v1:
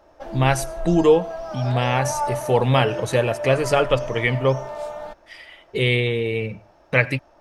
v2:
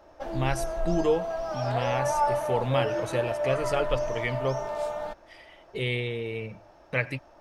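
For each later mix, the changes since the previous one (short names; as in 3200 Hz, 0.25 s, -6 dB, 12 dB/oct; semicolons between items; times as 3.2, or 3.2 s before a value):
speech -9.5 dB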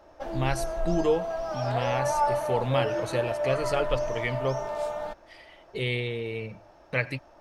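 speech: remove notch 4300 Hz, Q 7.5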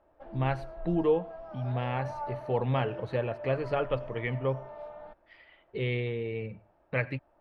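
background -11.0 dB; master: add air absorption 410 m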